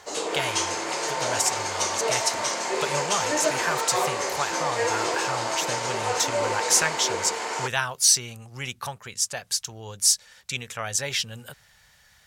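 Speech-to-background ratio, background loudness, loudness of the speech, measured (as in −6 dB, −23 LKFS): 0.0 dB, −26.5 LKFS, −26.5 LKFS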